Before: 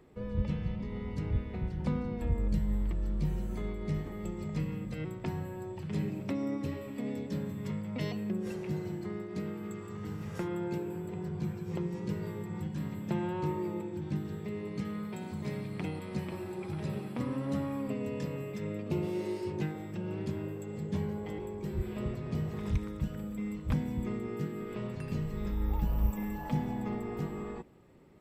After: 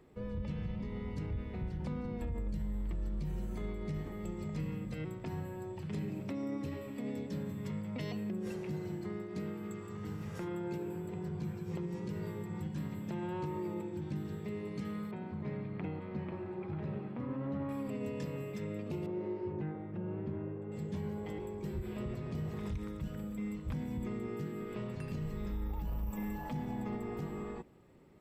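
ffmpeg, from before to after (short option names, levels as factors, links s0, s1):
-filter_complex "[0:a]asettb=1/sr,asplit=3[s0][s1][s2];[s0]atrim=end=15.114[s3];[s1]atrim=start=15.11:end=17.69,asetpts=PTS-STARTPTS,afade=t=in:d=0.004:c=qsin,afade=t=out:st=2.576:d=0.004:c=qsin,lowpass=2000[s4];[s2]atrim=start=17.686[s5];[s3][s4]acrossfade=d=0.004:c1=hsin:c2=qsin[s6];[s6][s5]acrossfade=d=0.004:c1=qsin:c2=hsin,asettb=1/sr,asplit=3[s7][s8][s9];[s7]atrim=end=19.064[s10];[s8]atrim=start=19.06:end=20.72,asetpts=PTS-STARTPTS,afade=t=in:d=0.004:c=qsin,afade=t=out:st=1.656:d=0.004:c=qsin,lowpass=1500[s11];[s9]atrim=start=20.716[s12];[s10][s11]acrossfade=d=0.004:c1=hsin:c2=qsin[s13];[s13][s12]acrossfade=d=0.004:c1=qsin:c2=hsin,alimiter=level_in=1.58:limit=0.0631:level=0:latency=1:release=44,volume=0.631,volume=0.794"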